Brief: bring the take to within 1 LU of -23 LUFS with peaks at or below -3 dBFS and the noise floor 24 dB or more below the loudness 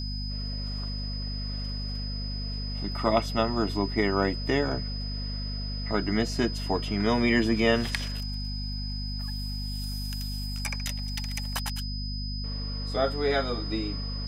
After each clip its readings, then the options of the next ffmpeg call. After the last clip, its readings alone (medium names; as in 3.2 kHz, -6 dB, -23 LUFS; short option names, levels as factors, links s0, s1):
hum 50 Hz; highest harmonic 250 Hz; hum level -31 dBFS; steady tone 5 kHz; tone level -37 dBFS; loudness -29.5 LUFS; peak level -9.0 dBFS; loudness target -23.0 LUFS
-> -af "bandreject=f=50:t=h:w=6,bandreject=f=100:t=h:w=6,bandreject=f=150:t=h:w=6,bandreject=f=200:t=h:w=6,bandreject=f=250:t=h:w=6"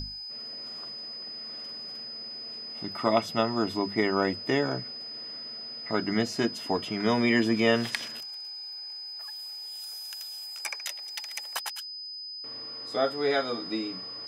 hum not found; steady tone 5 kHz; tone level -37 dBFS
-> -af "bandreject=f=5000:w=30"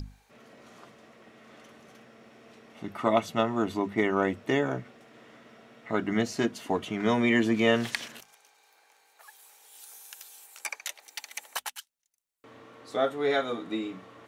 steady tone not found; loudness -29.0 LUFS; peak level -10.0 dBFS; loudness target -23.0 LUFS
-> -af "volume=2"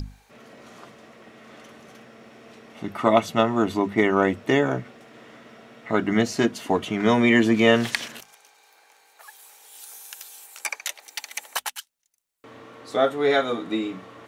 loudness -23.0 LUFS; peak level -4.0 dBFS; noise floor -59 dBFS